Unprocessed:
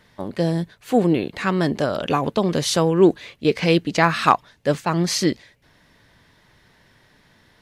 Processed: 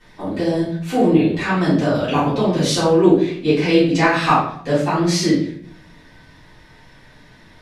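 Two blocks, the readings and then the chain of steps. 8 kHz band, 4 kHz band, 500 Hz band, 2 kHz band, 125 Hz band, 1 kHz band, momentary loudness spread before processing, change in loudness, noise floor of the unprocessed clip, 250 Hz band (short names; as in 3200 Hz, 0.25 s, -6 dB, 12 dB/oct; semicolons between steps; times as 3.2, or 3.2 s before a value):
+0.5 dB, +1.5 dB, +2.5 dB, +3.0 dB, +3.0 dB, +2.0 dB, 7 LU, +3.0 dB, -58 dBFS, +4.5 dB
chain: LPF 11000 Hz 12 dB/oct; in parallel at +2 dB: compressor, threshold -32 dBFS, peak gain reduction 21.5 dB; on the sum: shoebox room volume 95 m³, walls mixed, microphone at 3.5 m; gain -12.5 dB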